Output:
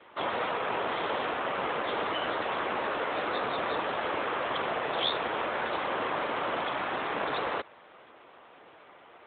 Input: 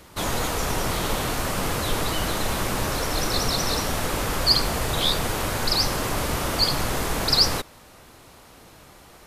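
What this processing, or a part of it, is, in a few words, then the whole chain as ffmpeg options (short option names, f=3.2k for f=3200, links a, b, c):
telephone: -filter_complex "[0:a]asettb=1/sr,asplit=3[a][b][c];[a]atrim=end=6.624[d];[b]atrim=start=6.62:end=7.09,asetpts=PTS-STARTPTS,afade=t=in:d=0.004:c=qsin,afade=t=out:st=0.466:d=0.004:c=qsin,equalizer=f=470:w=3.1:g=-5[e];[c]atrim=start=7.086[f];[d][e]acrossfade=d=0.004:c1=hsin:c2=qsin[g];[g][f]acrossfade=d=0.004:c1=qsin:c2=hsin,highpass=390,lowpass=3.3k" -ar 8000 -c:a libopencore_amrnb -b:a 12200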